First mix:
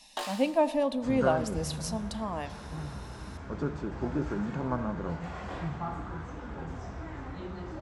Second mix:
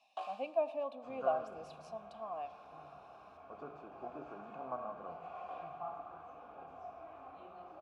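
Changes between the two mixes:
second sound: send +11.0 dB; master: add vowel filter a

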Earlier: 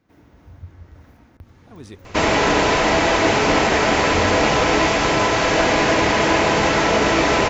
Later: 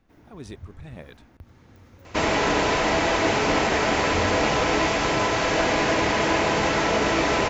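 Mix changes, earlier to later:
speech: entry -1.40 s; first sound: send -7.5 dB; second sound -5.0 dB

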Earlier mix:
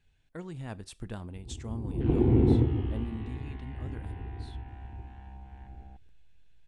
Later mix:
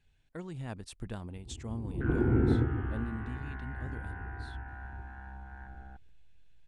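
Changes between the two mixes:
first sound -4.0 dB; second sound: add synth low-pass 1500 Hz, resonance Q 9; reverb: off

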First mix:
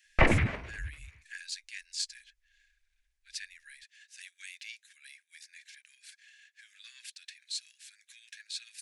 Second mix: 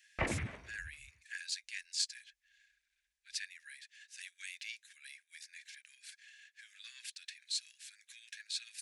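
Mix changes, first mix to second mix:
background -11.5 dB; master: add HPF 51 Hz

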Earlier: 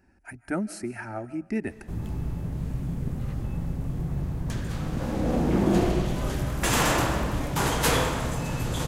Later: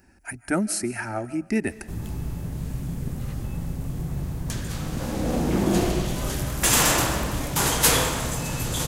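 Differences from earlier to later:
speech +4.5 dB; master: add high shelf 3800 Hz +11.5 dB

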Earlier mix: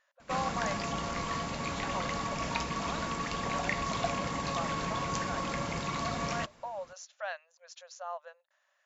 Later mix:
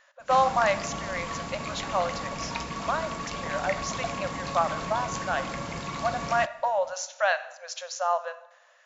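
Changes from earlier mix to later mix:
speech +11.5 dB; reverb: on, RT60 0.95 s

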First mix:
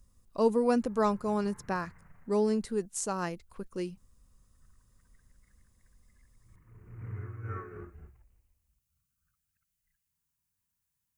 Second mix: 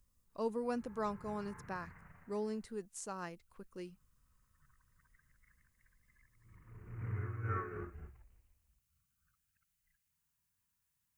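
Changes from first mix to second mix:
speech -12.0 dB; master: add bell 1700 Hz +3.5 dB 2 oct

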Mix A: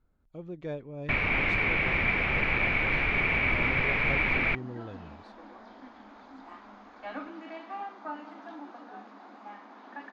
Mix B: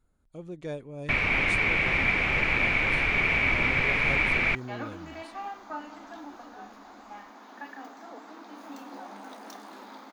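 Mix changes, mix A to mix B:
second sound: entry -2.35 s; master: remove air absorption 200 m

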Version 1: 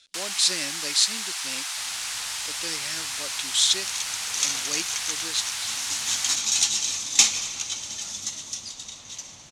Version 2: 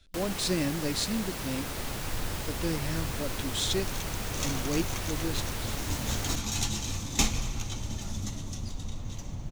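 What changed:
first sound: remove steep high-pass 710 Hz 48 dB/oct; master: remove weighting filter ITU-R 468

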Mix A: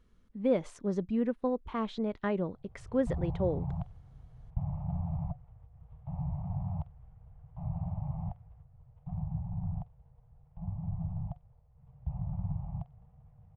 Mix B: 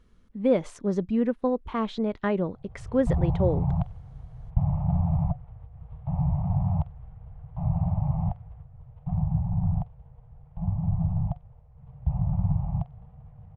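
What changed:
speech +5.5 dB; background +10.0 dB

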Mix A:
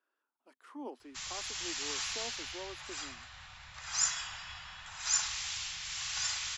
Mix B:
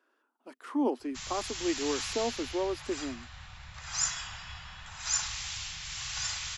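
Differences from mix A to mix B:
speech +10.5 dB; master: add low shelf 370 Hz +9.5 dB

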